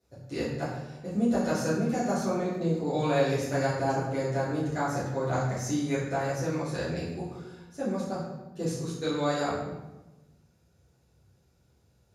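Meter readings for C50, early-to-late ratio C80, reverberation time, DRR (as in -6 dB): 1.5 dB, 4.5 dB, 1.1 s, -12.5 dB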